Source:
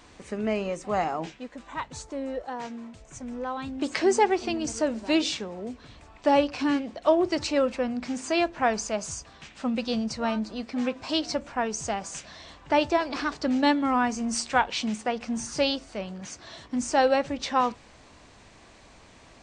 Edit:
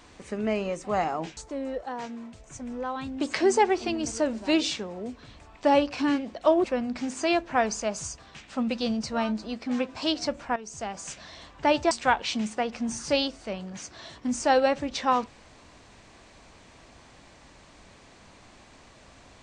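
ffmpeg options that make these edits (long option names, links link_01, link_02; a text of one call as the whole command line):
ffmpeg -i in.wav -filter_complex "[0:a]asplit=5[link_01][link_02][link_03][link_04][link_05];[link_01]atrim=end=1.372[link_06];[link_02]atrim=start=1.978:end=7.252[link_07];[link_03]atrim=start=7.708:end=11.63,asetpts=PTS-STARTPTS,afade=type=out:start_time=3.918:duration=0.004:curve=hsin:silence=0.199526[link_08];[link_04]atrim=start=11.63:end=12.982,asetpts=PTS-STARTPTS,afade=type=in:duration=0.58:silence=0.199526[link_09];[link_05]atrim=start=14.388[link_10];[link_06][link_07]acrossfade=duration=0.004:curve1=hsin:curve2=hsin[link_11];[link_08][link_09]concat=n=2:v=0:a=1[link_12];[link_11][link_12]acrossfade=duration=0.004:curve1=hsin:curve2=hsin[link_13];[link_13][link_10]acrossfade=duration=0.004:curve1=hsin:curve2=hsin" out.wav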